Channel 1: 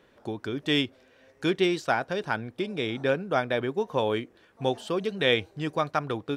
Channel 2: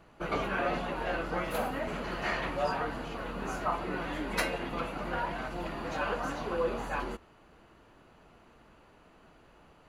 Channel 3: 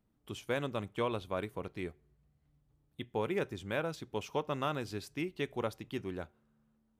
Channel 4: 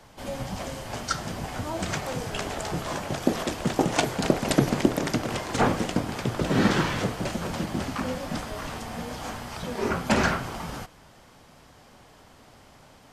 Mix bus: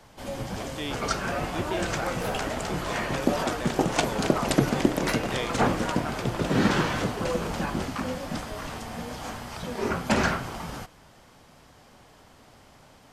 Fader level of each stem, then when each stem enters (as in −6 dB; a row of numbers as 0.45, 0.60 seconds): −10.0, 0.0, −11.0, −1.0 decibels; 0.10, 0.70, 0.00, 0.00 seconds